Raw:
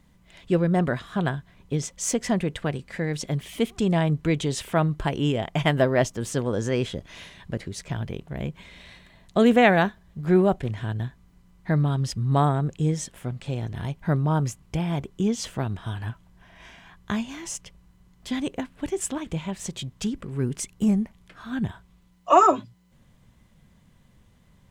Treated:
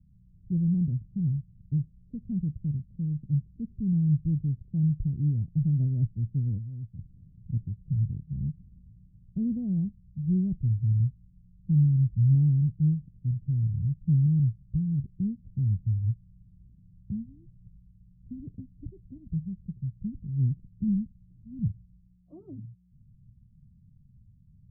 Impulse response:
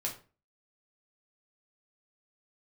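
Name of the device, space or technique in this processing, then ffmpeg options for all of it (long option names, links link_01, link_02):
the neighbour's flat through the wall: -filter_complex "[0:a]lowpass=frequency=180:width=0.5412,lowpass=frequency=180:width=1.3066,equalizer=frequency=110:width_type=o:width=0.64:gain=6,asplit=3[link_01][link_02][link_03];[link_01]afade=type=out:start_time=6.57:duration=0.02[link_04];[link_02]lowshelf=frequency=590:width_type=q:width=3:gain=-10,afade=type=in:start_time=6.57:duration=0.02,afade=type=out:start_time=6.98:duration=0.02[link_05];[link_03]afade=type=in:start_time=6.98:duration=0.02[link_06];[link_04][link_05][link_06]amix=inputs=3:normalize=0"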